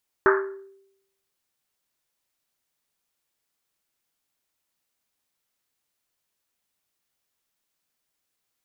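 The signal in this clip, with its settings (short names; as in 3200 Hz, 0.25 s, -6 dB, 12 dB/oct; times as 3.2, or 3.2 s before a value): Risset drum, pitch 390 Hz, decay 0.81 s, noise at 1400 Hz, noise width 690 Hz, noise 40%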